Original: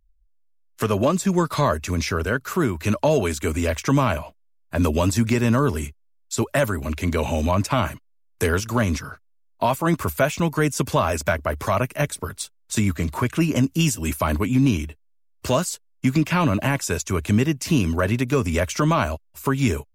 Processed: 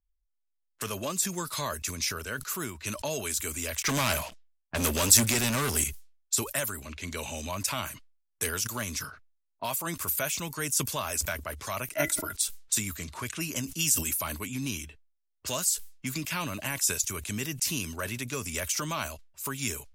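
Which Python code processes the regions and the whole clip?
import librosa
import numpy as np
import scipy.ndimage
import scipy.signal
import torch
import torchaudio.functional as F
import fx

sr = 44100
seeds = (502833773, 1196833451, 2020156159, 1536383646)

y = fx.chain(x, sr, fx.env_lowpass(base_hz=3000.0, full_db=-18.0),
    fx.leveller(passes=3), at=(3.82, 5.84))
y = fx.chain(y, sr, fx.peak_eq(hz=950.0, db=7.0, octaves=0.21),
    fx.small_body(hz=(320.0, 630.0, 1400.0, 2000.0), ring_ms=60, db=18), at=(11.92, 12.33))
y = scipy.signal.lfilter([1.0, -0.9], [1.0], y)
y = fx.env_lowpass(y, sr, base_hz=720.0, full_db=-33.5)
y = fx.sustainer(y, sr, db_per_s=110.0)
y = F.gain(torch.from_numpy(y), 3.0).numpy()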